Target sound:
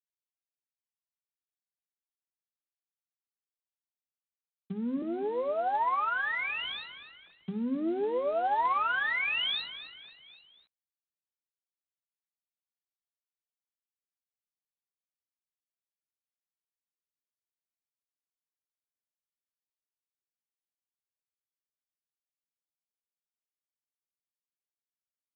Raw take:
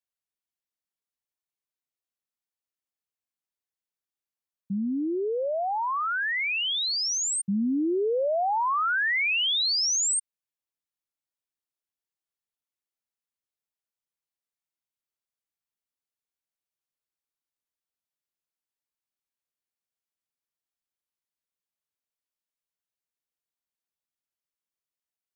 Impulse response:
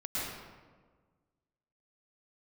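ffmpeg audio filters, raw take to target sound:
-filter_complex "[0:a]aeval=exprs='if(lt(val(0),0),0.447*val(0),val(0))':channel_layout=same,highpass=frequency=130:width=0.5412,highpass=frequency=130:width=1.3066,asettb=1/sr,asplit=3[link_01][link_02][link_03];[link_01]atrim=end=5.024[link_04];[link_02]atrim=start=5.02:end=7.25,asetpts=PTS-STARTPTS,afade=type=in:duration=0.004:curve=qsin,afade=type=out:start_time=2.226:duration=0.004:curve=qsin,acrossover=split=330 2400:gain=0.1 1 0.141[link_05][link_06][link_07];[link_05][link_06][link_07]amix=inputs=3:normalize=0[link_08];[link_03]atrim=start=7.246[link_09];[link_04][link_08]acrossfade=duration=0.004:curve1=hsin:curve2=qsin[link_10];[link_10][link_09]acrossfade=duration=0.004:curve1=qsin:curve2=hsin,aecho=1:1:258|516|774|1032:0.224|0.0985|0.0433|0.0191,acompressor=threshold=-32dB:ratio=3,bandreject=frequency=50:width_type=h:width=6,bandreject=frequency=100:width_type=h:width=6,bandreject=frequency=150:width_type=h:width=6,bandreject=frequency=200:width_type=h:width=6,bandreject=frequency=250:width_type=h:width=6,asplit=2[link_11][link_12];[link_12]adelay=12,volume=-9dB[link_13];[link_11][link_13]amix=inputs=2:normalize=0,adynamicequalizer=threshold=0.00398:dfrequency=960:dqfactor=1.7:tfrequency=960:tqfactor=1.7:attack=5:release=100:ratio=0.375:range=2:mode=boostabove:tftype=bell,volume=1.5dB" -ar 8000 -c:a adpcm_g726 -b:a 24k

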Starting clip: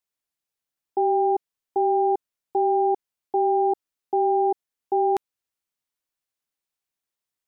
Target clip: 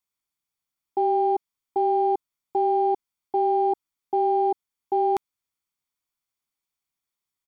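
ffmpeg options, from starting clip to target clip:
ffmpeg -i in.wav -af "aeval=exprs='0.2*(cos(1*acos(clip(val(0)/0.2,-1,1)))-cos(1*PI/2))+0.00158*(cos(7*acos(clip(val(0)/0.2,-1,1)))-cos(7*PI/2))':channel_layout=same,aecho=1:1:0.9:0.41" out.wav

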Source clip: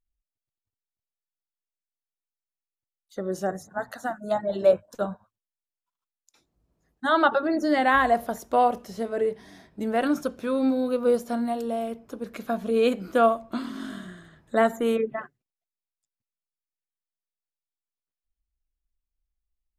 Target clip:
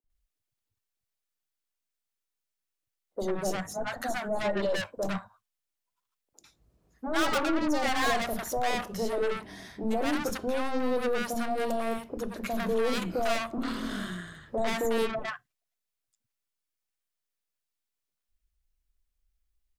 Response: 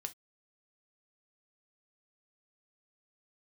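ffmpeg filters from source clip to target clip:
-filter_complex "[0:a]aeval=exprs='(tanh(35.5*val(0)+0.4)-tanh(0.4))/35.5':channel_layout=same,acrossover=split=250|810[link_01][link_02][link_03];[link_01]adelay=40[link_04];[link_03]adelay=100[link_05];[link_04][link_02][link_05]amix=inputs=3:normalize=0,asplit=2[link_06][link_07];[1:a]atrim=start_sample=2205[link_08];[link_07][link_08]afir=irnorm=-1:irlink=0,volume=-8dB[link_09];[link_06][link_09]amix=inputs=2:normalize=0,volume=5dB"

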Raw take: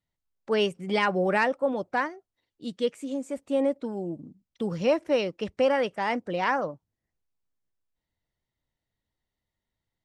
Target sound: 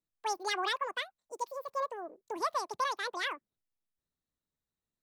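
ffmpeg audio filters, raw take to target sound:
ffmpeg -i in.wav -af "asetrate=88200,aresample=44100,volume=-8.5dB" out.wav

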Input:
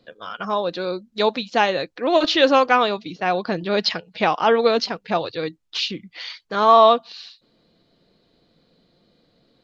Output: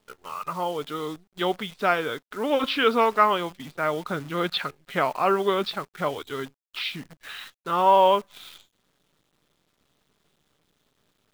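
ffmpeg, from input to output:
ffmpeg -i in.wav -af "asetrate=37485,aresample=44100,equalizer=frequency=1300:width_type=o:width=0.59:gain=9.5,acrusher=bits=7:dc=4:mix=0:aa=0.000001,volume=-7dB" out.wav

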